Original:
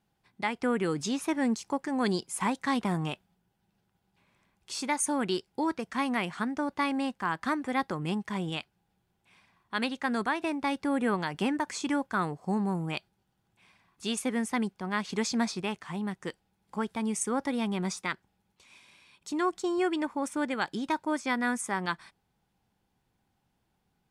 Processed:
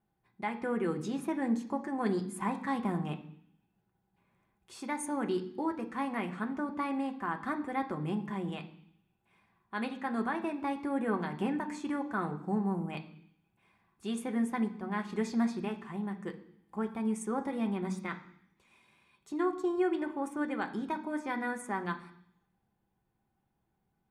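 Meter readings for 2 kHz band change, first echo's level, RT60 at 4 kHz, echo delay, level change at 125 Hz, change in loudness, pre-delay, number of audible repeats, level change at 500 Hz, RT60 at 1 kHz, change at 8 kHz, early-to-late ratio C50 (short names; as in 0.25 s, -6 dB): -6.5 dB, none, 0.85 s, none, -2.5 dB, -3.5 dB, 3 ms, none, -2.5 dB, 0.65 s, -12.0 dB, 13.0 dB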